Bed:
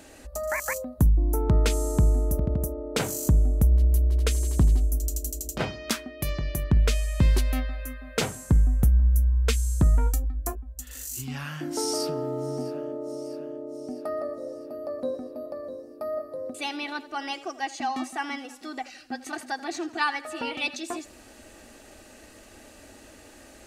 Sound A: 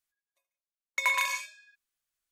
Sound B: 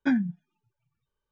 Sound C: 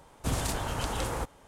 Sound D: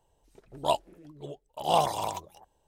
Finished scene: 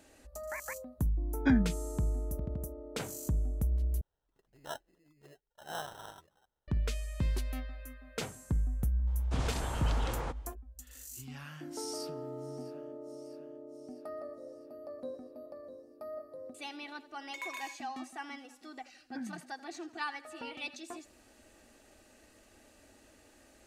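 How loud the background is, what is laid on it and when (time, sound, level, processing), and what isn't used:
bed -11.5 dB
1.40 s: add B -2.5 dB
4.01 s: replace with D -16.5 dB + sample-and-hold 19×
9.07 s: add C -4.5 dB + low-pass 5 kHz
16.36 s: add A -15 dB
19.09 s: add B -17 dB + low-pass 1.7 kHz

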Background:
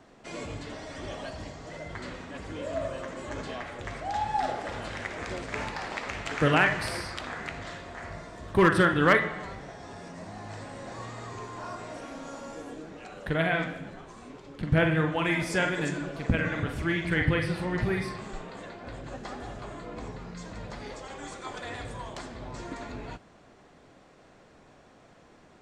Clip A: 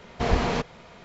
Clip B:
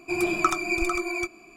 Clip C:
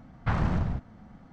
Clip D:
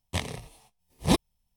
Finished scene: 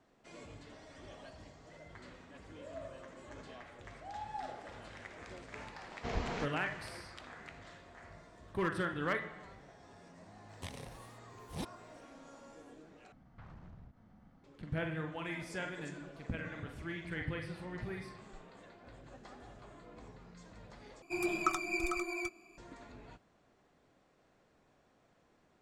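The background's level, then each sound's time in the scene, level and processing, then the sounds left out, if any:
background -14 dB
5.84 s: add A -14 dB
10.49 s: add D -5.5 dB + compression 2:1, threshold -42 dBFS
13.12 s: replace with C -11.5 dB + compression 4:1, threshold -41 dBFS
21.02 s: replace with B -9.5 dB + peaking EQ 86 Hz -3 dB

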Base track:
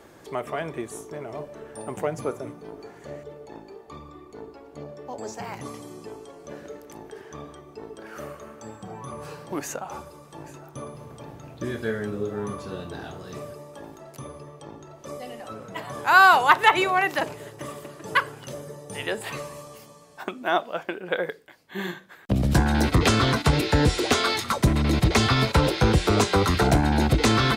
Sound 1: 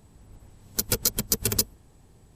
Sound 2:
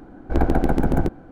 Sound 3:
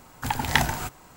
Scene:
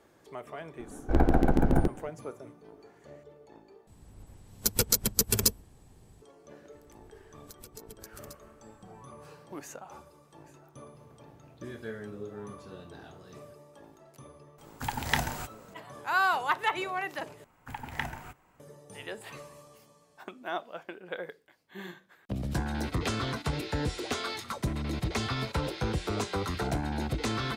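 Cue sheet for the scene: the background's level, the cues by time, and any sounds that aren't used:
base track -11.5 dB
0.79 s: add 2 -4 dB
3.87 s: replace with 1 -1 dB
6.72 s: add 1 -8.5 dB + compression 8:1, threshold -37 dBFS
14.58 s: add 3 -6.5 dB + spectral gate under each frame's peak -50 dB strong
17.44 s: replace with 3 -13.5 dB + resonant high shelf 3.2 kHz -7 dB, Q 1.5

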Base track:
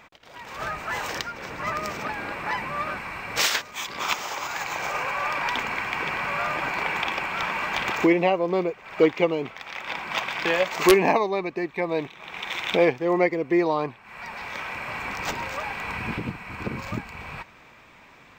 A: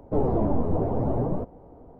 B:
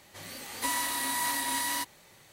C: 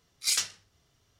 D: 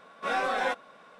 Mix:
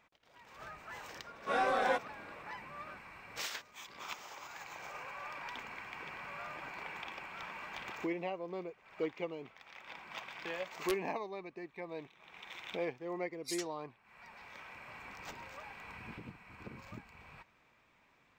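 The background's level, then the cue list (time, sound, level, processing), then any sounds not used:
base track -18 dB
1.24 s: add D -6 dB + peaking EQ 410 Hz +5 dB 2.8 oct
13.21 s: add C -13.5 dB + expander on every frequency bin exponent 2
not used: A, B

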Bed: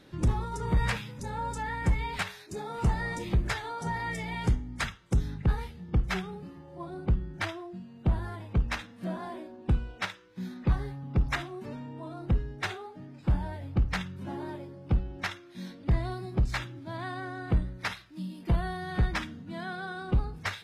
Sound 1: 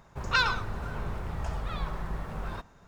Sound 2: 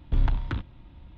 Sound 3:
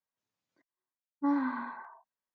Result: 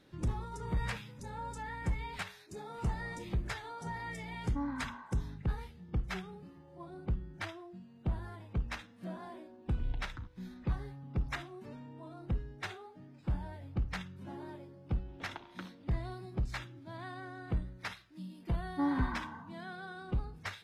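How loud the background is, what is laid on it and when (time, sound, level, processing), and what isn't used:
bed -8 dB
3.32 s: add 3 -8.5 dB
9.66 s: add 2 -13.5 dB + touch-sensitive phaser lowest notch 210 Hz, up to 1.3 kHz, full sweep at -17.5 dBFS
15.08 s: add 2 -9.5 dB + high-pass 360 Hz
17.55 s: add 3 -3 dB
not used: 1

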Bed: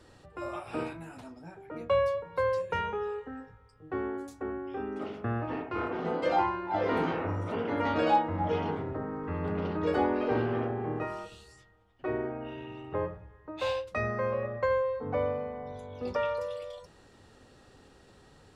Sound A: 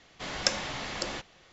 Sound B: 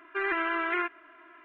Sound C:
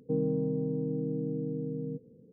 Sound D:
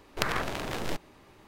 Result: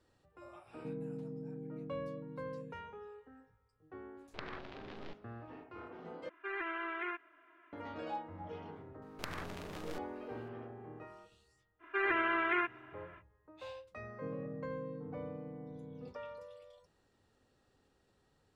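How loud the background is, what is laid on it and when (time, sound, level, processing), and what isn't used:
bed -16.5 dB
0.75 s: add C -13 dB
4.17 s: add D -16.5 dB + low-pass 4.4 kHz 24 dB/octave
6.29 s: replace with B -10.5 dB
9.02 s: add D -14 dB
11.79 s: add B -3 dB, fades 0.05 s
14.12 s: add C -14 dB
not used: A

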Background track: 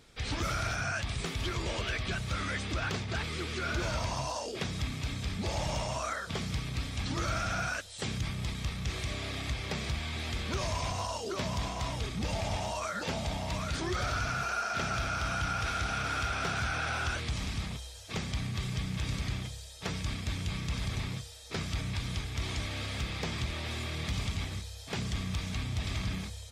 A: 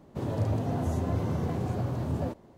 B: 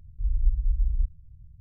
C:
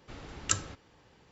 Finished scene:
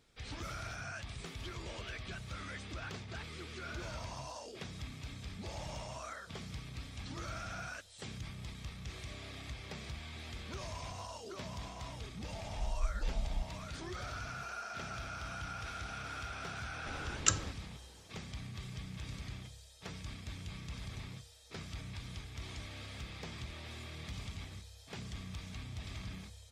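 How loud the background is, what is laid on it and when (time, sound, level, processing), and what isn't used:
background track -10.5 dB
12.37 s: add B -12 dB
16.77 s: add C
not used: A

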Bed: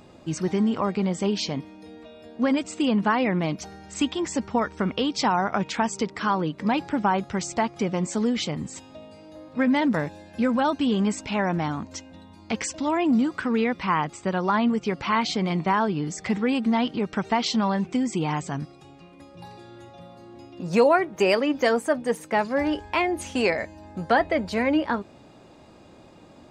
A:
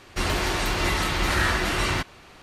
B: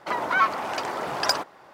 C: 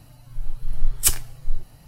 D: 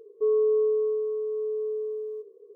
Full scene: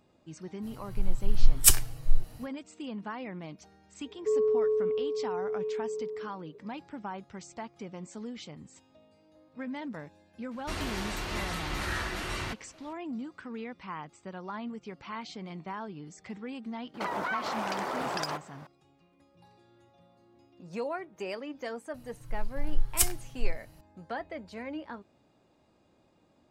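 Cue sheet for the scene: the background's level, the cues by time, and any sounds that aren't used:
bed -16.5 dB
0.61 s: add C, fades 0.05 s
4.05 s: add D -3.5 dB
10.51 s: add A -10.5 dB
16.94 s: add B -1.5 dB + compression 10:1, threshold -27 dBFS
21.94 s: add C -6.5 dB

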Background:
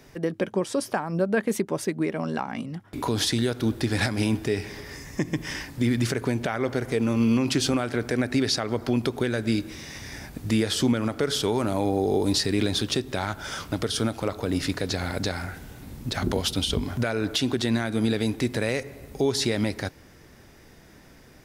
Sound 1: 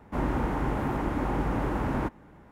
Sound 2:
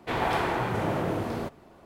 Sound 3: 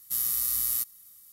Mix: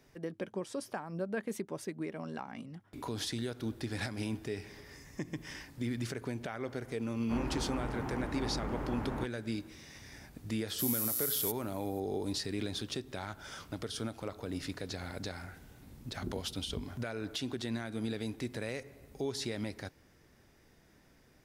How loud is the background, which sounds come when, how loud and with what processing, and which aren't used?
background -12.5 dB
7.17 s: add 1 -9.5 dB
10.68 s: add 3 -6.5 dB + Bessel high-pass 2 kHz
not used: 2

